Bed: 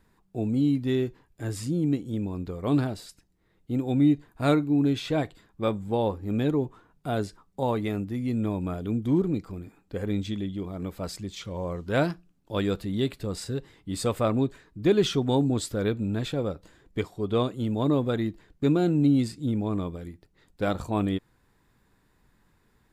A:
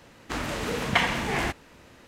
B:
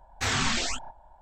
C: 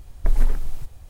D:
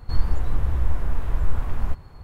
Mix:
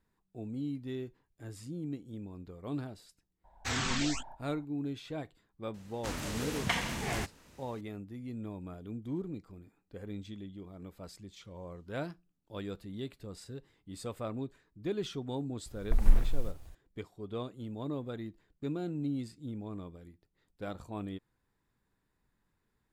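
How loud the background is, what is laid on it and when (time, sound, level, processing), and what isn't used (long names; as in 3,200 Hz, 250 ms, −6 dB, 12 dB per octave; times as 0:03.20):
bed −13.5 dB
0:03.44: mix in B −7 dB
0:05.74: mix in A −10 dB + bass and treble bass +5 dB, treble +9 dB
0:15.66: mix in C −8.5 dB + delay with pitch and tempo change per echo 108 ms, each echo +3 semitones, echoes 2
not used: D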